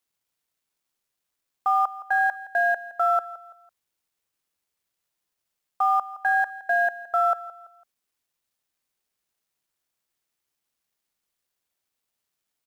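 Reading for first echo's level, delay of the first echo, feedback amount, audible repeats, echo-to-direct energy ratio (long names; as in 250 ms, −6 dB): −17.0 dB, 167 ms, 37%, 3, −16.5 dB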